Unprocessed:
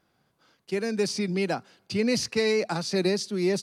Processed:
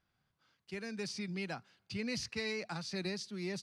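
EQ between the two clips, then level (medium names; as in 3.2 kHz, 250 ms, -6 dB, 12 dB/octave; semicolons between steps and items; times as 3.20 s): RIAA curve playback; amplifier tone stack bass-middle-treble 5-5-5; bass shelf 340 Hz -9.5 dB; +4.0 dB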